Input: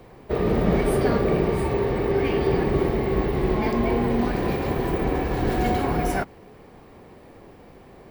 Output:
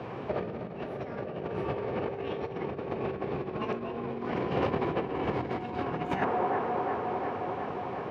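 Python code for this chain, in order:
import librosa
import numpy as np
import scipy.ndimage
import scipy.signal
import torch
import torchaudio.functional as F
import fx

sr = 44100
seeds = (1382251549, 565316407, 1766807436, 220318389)

p1 = scipy.signal.sosfilt(scipy.signal.butter(2, 2500.0, 'lowpass', fs=sr, output='sos'), x)
p2 = fx.formant_shift(p1, sr, semitones=3)
p3 = p2 + fx.echo_wet_bandpass(p2, sr, ms=357, feedback_pct=78, hz=780.0, wet_db=-14.5, dry=0)
p4 = fx.over_compress(p3, sr, threshold_db=-29.0, ratio=-0.5)
y = scipy.signal.sosfilt(scipy.signal.butter(4, 90.0, 'highpass', fs=sr, output='sos'), p4)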